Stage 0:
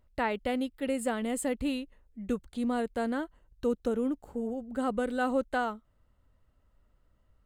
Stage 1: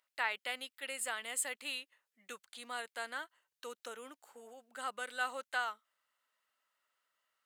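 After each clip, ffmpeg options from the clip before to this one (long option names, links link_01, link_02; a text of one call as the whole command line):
ffmpeg -i in.wav -af "highpass=1500,volume=2.5dB" out.wav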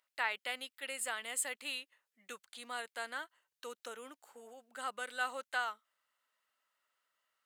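ffmpeg -i in.wav -af anull out.wav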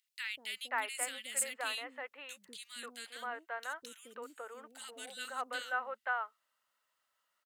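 ffmpeg -i in.wav -filter_complex "[0:a]acrossover=split=360|2100[link_01][link_02][link_03];[link_01]adelay=190[link_04];[link_02]adelay=530[link_05];[link_04][link_05][link_03]amix=inputs=3:normalize=0,volume=2.5dB" out.wav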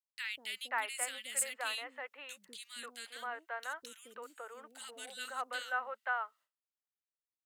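ffmpeg -i in.wav -filter_complex "[0:a]agate=range=-33dB:threshold=-59dB:ratio=3:detection=peak,acrossover=split=430|1200|6800[link_01][link_02][link_03][link_04];[link_01]alimiter=level_in=31dB:limit=-24dB:level=0:latency=1:release=464,volume=-31dB[link_05];[link_05][link_02][link_03][link_04]amix=inputs=4:normalize=0" out.wav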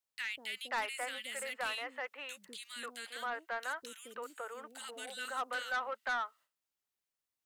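ffmpeg -i in.wav -filter_complex "[0:a]acrossover=split=2600[link_01][link_02];[link_02]acompressor=threshold=-47dB:ratio=4:attack=1:release=60[link_03];[link_01][link_03]amix=inputs=2:normalize=0,asoftclip=type=tanh:threshold=-34dB,volume=4.5dB" out.wav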